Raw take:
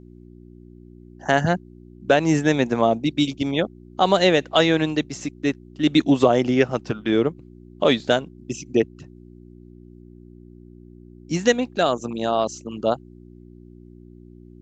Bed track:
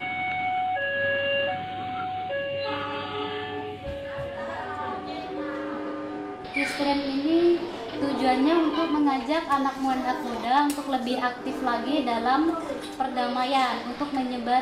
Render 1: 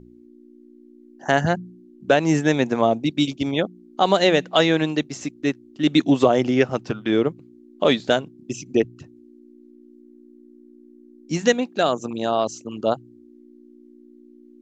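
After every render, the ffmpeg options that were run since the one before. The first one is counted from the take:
-af "bandreject=f=60:t=h:w=4,bandreject=f=120:t=h:w=4,bandreject=f=180:t=h:w=4"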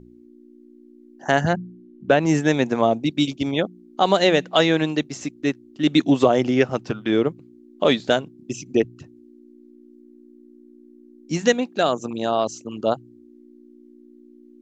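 -filter_complex "[0:a]asettb=1/sr,asplit=3[s0][s1][s2];[s0]atrim=end=1.534[s3];[s1]atrim=start=1.53:end=2.26,asetpts=PTS-STARTPTS,afade=t=in:d=0.004:c=qsin,afade=t=out:st=0.726:d=0.004:c=qsin,bass=f=250:g=3,treble=f=4000:g=-9[s4];[s2]atrim=start=2.256[s5];[s3][s4]acrossfade=d=0.004:c1=hsin:c2=qsin[s6];[s6][s5]acrossfade=d=0.004:c1=qsin:c2=hsin"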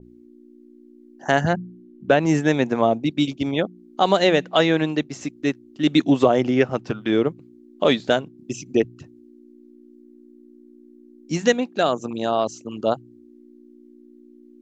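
-af "adynamicequalizer=threshold=0.0112:dfrequency=3400:dqfactor=0.7:tfrequency=3400:tqfactor=0.7:attack=5:release=100:ratio=0.375:range=3:mode=cutabove:tftype=highshelf"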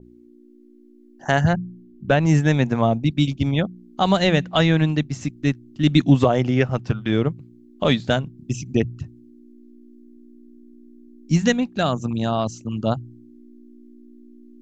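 -af "asubboost=boost=10:cutoff=130"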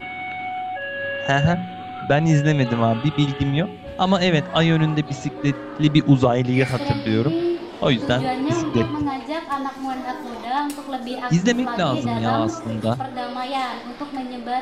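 -filter_complex "[1:a]volume=0.841[s0];[0:a][s0]amix=inputs=2:normalize=0"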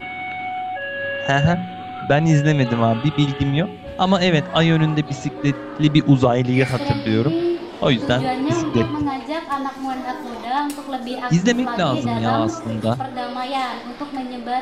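-af "volume=1.19,alimiter=limit=0.708:level=0:latency=1"

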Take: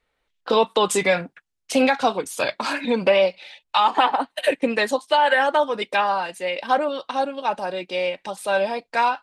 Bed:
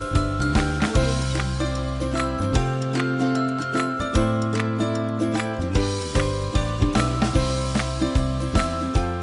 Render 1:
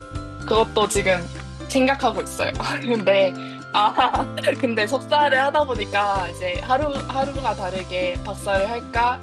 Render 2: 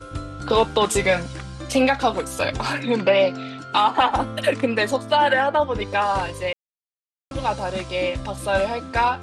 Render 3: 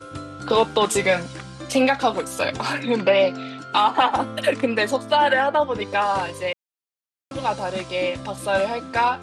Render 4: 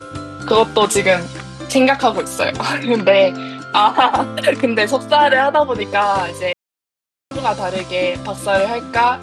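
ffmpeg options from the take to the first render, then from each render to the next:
-filter_complex "[1:a]volume=0.316[s0];[0:a][s0]amix=inputs=2:normalize=0"
-filter_complex "[0:a]asettb=1/sr,asplit=3[s0][s1][s2];[s0]atrim=end=2.964[s3];[s1]atrim=start=2.96:end=3.58,asetpts=PTS-STARTPTS,afade=t=in:d=0.004:c=qsin,afade=t=out:st=0.616:d=0.004:c=qsin,lowpass=f=7300:w=0.5412,lowpass=f=7300:w=1.3066[s4];[s2]atrim=start=3.576[s5];[s3][s4]acrossfade=d=0.004:c1=hsin:c2=qsin[s6];[s6][s5]acrossfade=d=0.004:c1=qsin:c2=hsin,asettb=1/sr,asplit=3[s7][s8][s9];[s7]atrim=end=5.334[s10];[s8]atrim=start=5.33:end=6.02,asetpts=PTS-STARTPTS,afade=t=in:d=0.004:c=qsin,afade=t=out:st=0.686:d=0.004:c=qsin,highshelf=f=3900:g=-10[s11];[s9]atrim=start=6.016[s12];[s10][s11]acrossfade=d=0.004:c1=hsin:c2=qsin[s13];[s13][s12]acrossfade=d=0.004:c1=qsin:c2=hsin,asplit=3[s14][s15][s16];[s14]atrim=end=6.53,asetpts=PTS-STARTPTS,afade=t=out:st=6.526:d=0.004:c=hsin[s17];[s15]atrim=start=6.53:end=7.31,asetpts=PTS-STARTPTS,volume=0[s18];[s16]atrim=start=7.31,asetpts=PTS-STARTPTS,afade=t=in:d=0.004:c=hsin[s19];[s17][s18][s19]concat=n=3:v=0:a=1"
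-af "highpass=130"
-af "volume=1.88,alimiter=limit=0.891:level=0:latency=1"

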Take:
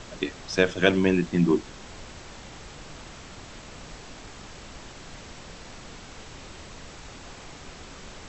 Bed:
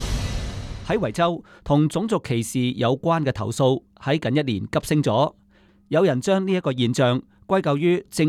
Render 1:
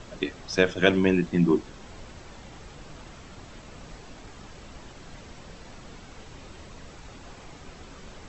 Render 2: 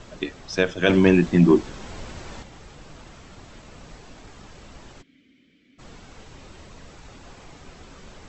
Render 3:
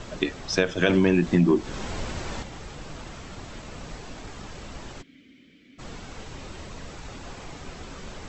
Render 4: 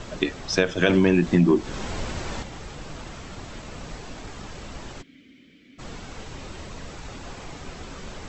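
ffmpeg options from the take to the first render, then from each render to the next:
-af "afftdn=nr=6:nf=-45"
-filter_complex "[0:a]asettb=1/sr,asplit=3[s0][s1][s2];[s0]atrim=end=0.894[s3];[s1]atrim=start=0.89:end=2.43,asetpts=PTS-STARTPTS,afade=t=in:d=0.004:c=qsin,afade=t=out:st=1.536:d=0.004:c=qsin,acontrast=73[s4];[s2]atrim=start=2.426[s5];[s3][s4]acrossfade=d=0.004:c1=hsin:c2=qsin[s6];[s6][s5]acrossfade=d=0.004:c1=qsin:c2=hsin,asplit=3[s7][s8][s9];[s7]afade=t=out:st=5.01:d=0.02[s10];[s8]asplit=3[s11][s12][s13];[s11]bandpass=f=270:t=q:w=8,volume=1[s14];[s12]bandpass=f=2290:t=q:w=8,volume=0.501[s15];[s13]bandpass=f=3010:t=q:w=8,volume=0.355[s16];[s14][s15][s16]amix=inputs=3:normalize=0,afade=t=in:st=5.01:d=0.02,afade=t=out:st=5.78:d=0.02[s17];[s9]afade=t=in:st=5.78:d=0.02[s18];[s10][s17][s18]amix=inputs=3:normalize=0"
-filter_complex "[0:a]asplit=2[s0][s1];[s1]alimiter=limit=0.237:level=0:latency=1:release=239,volume=0.794[s2];[s0][s2]amix=inputs=2:normalize=0,acompressor=threshold=0.126:ratio=3"
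-af "volume=1.19"

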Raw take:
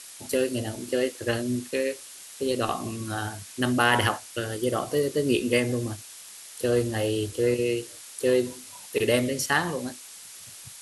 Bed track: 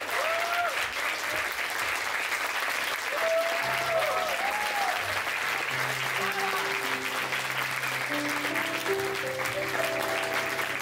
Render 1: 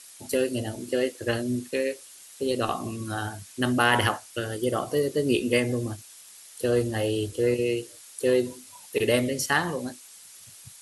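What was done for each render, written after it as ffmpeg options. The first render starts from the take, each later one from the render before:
-af "afftdn=nr=6:nf=-45"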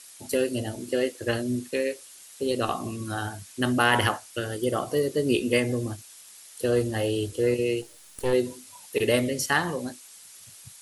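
-filter_complex "[0:a]asplit=3[s0][s1][s2];[s0]afade=t=out:st=7.81:d=0.02[s3];[s1]aeval=exprs='if(lt(val(0),0),0.251*val(0),val(0))':c=same,afade=t=in:st=7.81:d=0.02,afade=t=out:st=8.32:d=0.02[s4];[s2]afade=t=in:st=8.32:d=0.02[s5];[s3][s4][s5]amix=inputs=3:normalize=0"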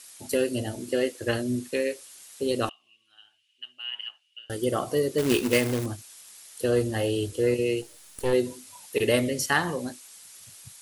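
-filter_complex "[0:a]asettb=1/sr,asplit=3[s0][s1][s2];[s0]atrim=end=2.694[s3];[s1]atrim=start=2.69:end=4.5,asetpts=PTS-STARTPTS,afade=t=in:d=0.004:c=qsin,afade=t=out:st=1.806:d=0.004:c=qsin,bandpass=f=2900:t=q:w=20[s4];[s2]atrim=start=4.496[s5];[s3][s4]acrossfade=d=0.004:c1=hsin:c2=qsin[s6];[s6][s5]acrossfade=d=0.004:c1=qsin:c2=hsin,asettb=1/sr,asplit=3[s7][s8][s9];[s7]atrim=end=5.184[s10];[s8]atrim=start=5.18:end=5.86,asetpts=PTS-STARTPTS,afade=t=in:d=0.004:c=qsin,afade=t=out:st=0.676:d=0.004:c=qsin,acrusher=bits=2:mode=log:mix=0:aa=0.000001[s11];[s9]atrim=start=5.856[s12];[s10][s11]acrossfade=d=0.004:c1=hsin:c2=qsin[s13];[s13][s12]acrossfade=d=0.004:c1=qsin:c2=hsin"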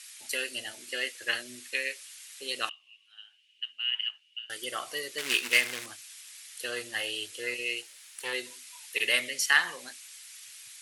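-af "bandpass=f=2100:t=q:w=1.5:csg=0,crystalizer=i=5:c=0"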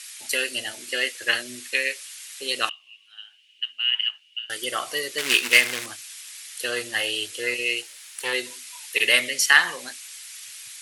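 -af "volume=2.37,alimiter=limit=0.794:level=0:latency=1"

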